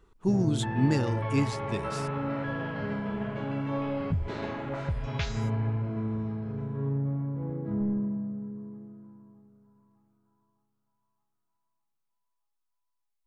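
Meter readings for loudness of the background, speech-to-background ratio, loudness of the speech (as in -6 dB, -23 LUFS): -32.5 LUFS, 3.5 dB, -29.0 LUFS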